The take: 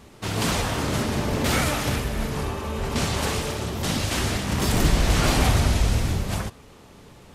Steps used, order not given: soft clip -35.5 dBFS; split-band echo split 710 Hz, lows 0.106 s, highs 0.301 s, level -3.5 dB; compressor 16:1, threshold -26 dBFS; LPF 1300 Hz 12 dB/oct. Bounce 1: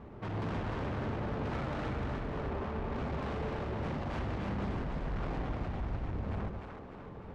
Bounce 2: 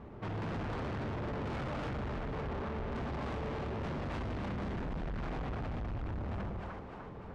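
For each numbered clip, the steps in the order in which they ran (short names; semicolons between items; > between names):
LPF > compressor > soft clip > split-band echo; LPF > compressor > split-band echo > soft clip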